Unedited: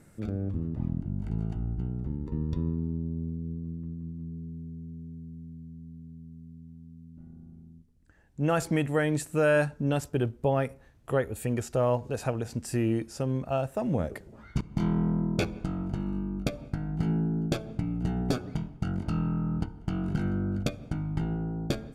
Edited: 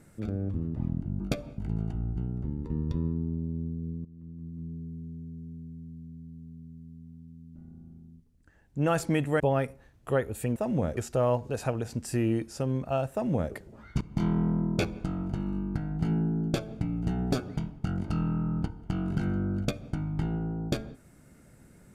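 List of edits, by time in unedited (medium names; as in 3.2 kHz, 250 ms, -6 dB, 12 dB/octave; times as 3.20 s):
3.67–4.26 s: fade in, from -18 dB
9.02–10.41 s: delete
13.72–14.13 s: copy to 11.57 s
16.35–16.73 s: move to 1.20 s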